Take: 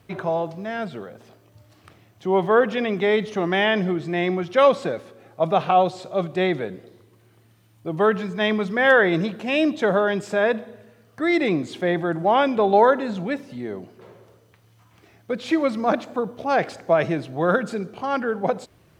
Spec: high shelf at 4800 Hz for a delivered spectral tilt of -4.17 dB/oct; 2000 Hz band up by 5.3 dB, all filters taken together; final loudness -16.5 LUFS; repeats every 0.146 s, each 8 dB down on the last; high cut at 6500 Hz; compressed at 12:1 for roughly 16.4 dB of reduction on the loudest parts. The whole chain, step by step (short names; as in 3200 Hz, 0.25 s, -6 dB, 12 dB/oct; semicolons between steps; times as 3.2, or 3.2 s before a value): LPF 6500 Hz; bell 2000 Hz +7.5 dB; high shelf 4800 Hz -6 dB; compressor 12:1, threshold -26 dBFS; feedback echo 0.146 s, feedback 40%, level -8 dB; gain +14 dB